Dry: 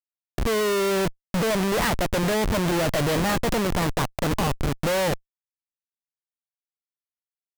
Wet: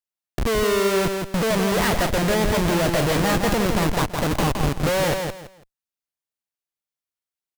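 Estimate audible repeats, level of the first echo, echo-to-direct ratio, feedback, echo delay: 3, -5.0 dB, -4.5 dB, 24%, 166 ms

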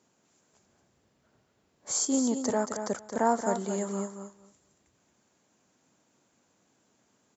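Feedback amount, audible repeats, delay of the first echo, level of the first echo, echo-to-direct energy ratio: 16%, 2, 226 ms, -8.0 dB, -8.0 dB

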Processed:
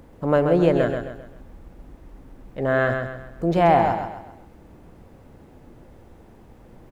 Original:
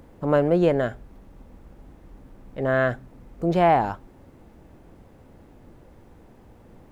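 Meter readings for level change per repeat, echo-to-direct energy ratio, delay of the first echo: -8.0 dB, -5.0 dB, 132 ms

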